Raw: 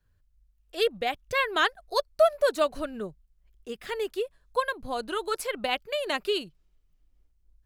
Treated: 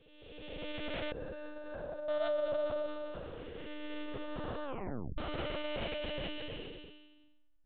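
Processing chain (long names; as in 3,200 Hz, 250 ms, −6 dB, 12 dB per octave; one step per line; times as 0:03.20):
spectrum smeared in time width 815 ms
0:01.11–0:02.09: moving average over 42 samples
one-pitch LPC vocoder at 8 kHz 300 Hz
0:04.64: tape stop 0.54 s
level +2 dB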